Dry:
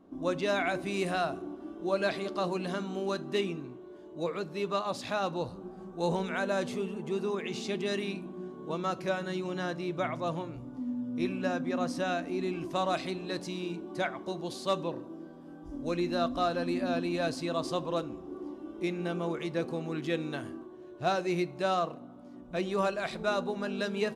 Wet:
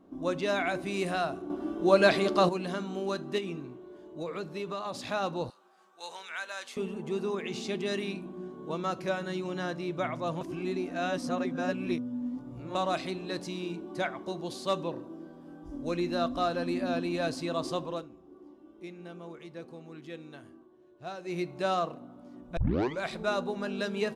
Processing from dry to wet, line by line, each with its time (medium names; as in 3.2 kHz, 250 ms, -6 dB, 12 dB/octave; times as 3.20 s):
1.50–2.49 s: gain +8 dB
3.38–5.00 s: compression, threshold -31 dBFS
5.50–6.77 s: high-pass 1.4 kHz
10.41–12.75 s: reverse
17.65–21.64 s: dip -11.5 dB, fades 0.44 s equal-power
22.57 s: tape start 0.45 s